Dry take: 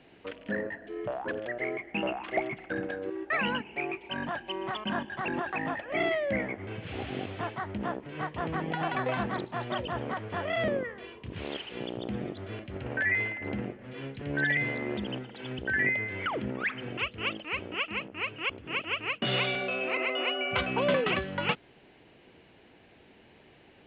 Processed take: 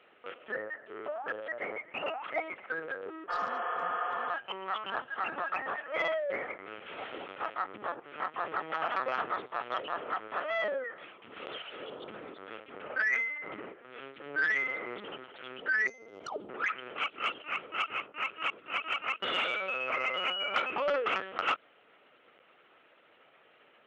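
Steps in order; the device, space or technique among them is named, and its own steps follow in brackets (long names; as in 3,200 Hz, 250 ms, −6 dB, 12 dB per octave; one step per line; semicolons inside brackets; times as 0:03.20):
talking toy (linear-prediction vocoder at 8 kHz pitch kept; high-pass filter 430 Hz 12 dB per octave; parametric band 1,300 Hz +11 dB 0.33 octaves; soft clipping −15.5 dBFS, distortion −24 dB)
0:03.31–0:04.25: healed spectral selection 290–3,400 Hz after
0:15.87–0:16.49: drawn EQ curve 730 Hz 0 dB, 2,000 Hz −25 dB, 5,000 Hz +5 dB
level −2 dB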